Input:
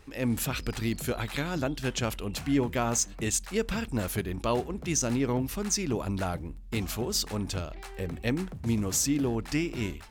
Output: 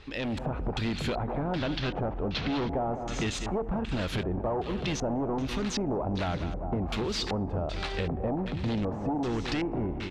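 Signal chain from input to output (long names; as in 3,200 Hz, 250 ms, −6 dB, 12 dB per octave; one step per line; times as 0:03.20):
0:01.39–0:02.76: variable-slope delta modulation 32 kbit/s
delay with a high-pass on its return 74 ms, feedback 75%, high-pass 1,800 Hz, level −19.5 dB
in parallel at −8.5 dB: sine wavefolder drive 13 dB, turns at −14 dBFS
on the sum: automatic gain control
dynamic equaliser 4,600 Hz, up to −5 dB, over −25 dBFS, Q 0.97
on a send: repeating echo 201 ms, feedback 50%, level −12 dB
on the sum: auto-filter low-pass square 1.3 Hz 780–3,800 Hz
downward compressor 4 to 1, threshold −22 dBFS, peak gain reduction 14.5 dB
level −8 dB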